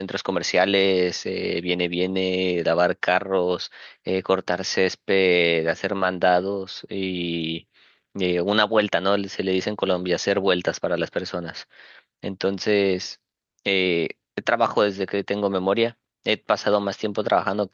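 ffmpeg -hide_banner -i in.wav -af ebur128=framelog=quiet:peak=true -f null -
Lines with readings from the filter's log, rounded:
Integrated loudness:
  I:         -22.8 LUFS
  Threshold: -33.1 LUFS
Loudness range:
  LRA:         3.2 LU
  Threshold: -43.3 LUFS
  LRA low:   -25.2 LUFS
  LRA high:  -22.0 LUFS
True peak:
  Peak:       -3.4 dBFS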